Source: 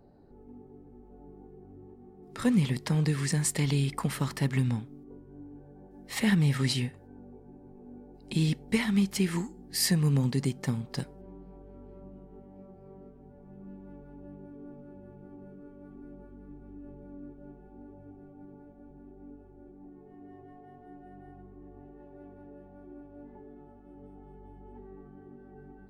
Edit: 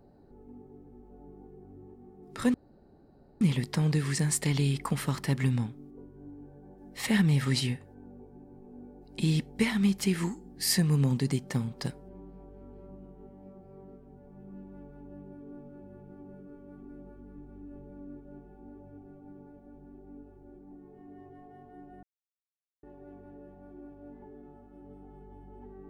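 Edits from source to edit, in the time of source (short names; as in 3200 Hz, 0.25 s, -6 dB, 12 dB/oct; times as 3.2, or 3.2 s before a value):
2.54 insert room tone 0.87 s
21.16–21.96 mute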